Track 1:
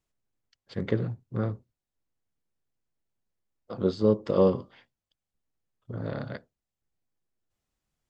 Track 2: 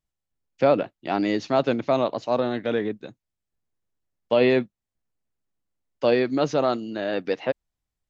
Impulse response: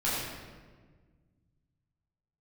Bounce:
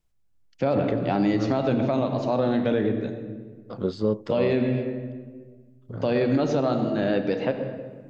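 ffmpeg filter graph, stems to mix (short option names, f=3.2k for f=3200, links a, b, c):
-filter_complex "[0:a]volume=0.5dB[a];[1:a]lowshelf=f=340:g=9.5,volume=-2dB,asplit=2[b][c];[c]volume=-14.5dB[d];[2:a]atrim=start_sample=2205[e];[d][e]afir=irnorm=-1:irlink=0[f];[a][b][f]amix=inputs=3:normalize=0,alimiter=limit=-13.5dB:level=0:latency=1:release=108"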